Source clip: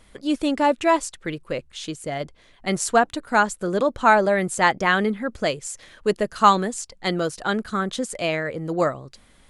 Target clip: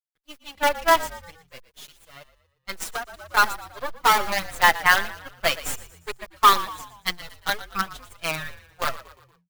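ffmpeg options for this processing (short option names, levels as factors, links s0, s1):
-filter_complex "[0:a]highpass=940,acrusher=bits=4:dc=4:mix=0:aa=0.000001,asettb=1/sr,asplit=3[s0][s1][s2];[s0]atrim=end=1.404[s3];[s1]atrim=start=1.4:end=2.12,asetpts=PTS-STARTPTS,afade=t=in:d=0.004:c=qsin,afade=t=out:st=0.716:d=0.004:c=qsin,highshelf=f=3500:g=5[s4];[s2]atrim=start=2.116[s5];[s3][s4]acrossfade=d=0.004:c1=hsin:c2=qsin[s6];[s6][s5]acrossfade=d=0.004:c1=qsin:c2=hsin,asplit=3[s7][s8][s9];[s7]afade=t=out:st=5.4:d=0.02[s10];[s8]acontrast=56,afade=t=in:st=5.4:d=0.02,afade=t=out:st=6.07:d=0.02[s11];[s9]afade=t=in:st=6.07:d=0.02[s12];[s10][s11][s12]amix=inputs=3:normalize=0,asoftclip=type=hard:threshold=0.2,agate=range=0.0224:threshold=0.0501:ratio=3:detection=peak,equalizer=f=7700:t=o:w=0.94:g=-4.5,asplit=5[s13][s14][s15][s16][s17];[s14]adelay=117,afreqshift=-44,volume=0.15[s18];[s15]adelay=234,afreqshift=-88,volume=0.0692[s19];[s16]adelay=351,afreqshift=-132,volume=0.0316[s20];[s17]adelay=468,afreqshift=-176,volume=0.0146[s21];[s13][s18][s19][s20][s21]amix=inputs=5:normalize=0,asettb=1/sr,asplit=3[s22][s23][s24];[s22]atrim=end=2.814[s25];[s23]atrim=start=2.81:end=3.37,asetpts=PTS-STARTPTS,afade=t=in:d=0.004:c=qsin,afade=t=out:st=0.556:d=0.004:c=qsin,acompressor=threshold=0.0251:ratio=12[s26];[s24]atrim=start=3.366[s27];[s25][s26]acrossfade=d=0.004:c1=hsin:c2=qsin[s28];[s28][s27]acrossfade=d=0.004:c1=qsin:c2=hsin,asplit=2[s29][s30];[s30]adelay=5.3,afreqshift=-2.6[s31];[s29][s31]amix=inputs=2:normalize=1,volume=2.51"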